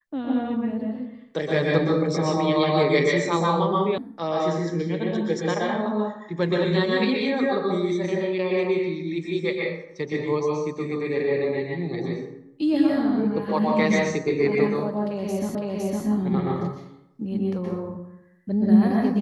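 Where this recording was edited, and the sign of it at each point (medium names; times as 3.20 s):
3.98 s: sound stops dead
15.55 s: repeat of the last 0.51 s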